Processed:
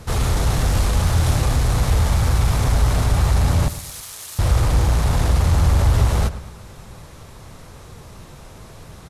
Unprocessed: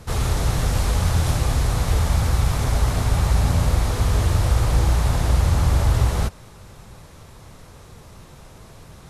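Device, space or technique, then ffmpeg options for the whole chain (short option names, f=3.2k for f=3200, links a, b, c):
parallel distortion: -filter_complex "[0:a]asplit=2[a][b];[b]asoftclip=type=hard:threshold=-20.5dB,volume=-4dB[c];[a][c]amix=inputs=2:normalize=0,asettb=1/sr,asplit=3[d][e][f];[d]atrim=end=3.684[g];[e]atrim=start=3.68:end=4.39,asetpts=PTS-STARTPTS,afade=t=in:d=0.004:c=qsin,afade=t=out:st=0.706:d=0.004:c=qsin,aderivative[h];[f]atrim=start=4.386[i];[g][h]acrossfade=d=0.004:c1=hsin:c2=qsin[j];[j][i]acrossfade=d=0.004:c1=qsin:c2=hsin,asplit=2[k][l];[l]adelay=110,lowpass=f=3.3k:p=1,volume=-14dB,asplit=2[m][n];[n]adelay=110,lowpass=f=3.3k:p=1,volume=0.45,asplit=2[o][p];[p]adelay=110,lowpass=f=3.3k:p=1,volume=0.45,asplit=2[q][r];[r]adelay=110,lowpass=f=3.3k:p=1,volume=0.45[s];[k][m][o][q][s]amix=inputs=5:normalize=0,volume=-1dB"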